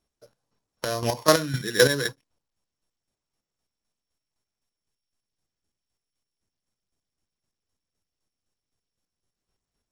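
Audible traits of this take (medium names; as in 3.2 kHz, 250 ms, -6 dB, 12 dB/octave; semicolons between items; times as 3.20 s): a buzz of ramps at a fixed pitch in blocks of 8 samples; chopped level 3.9 Hz, depth 65%, duty 30%; SBC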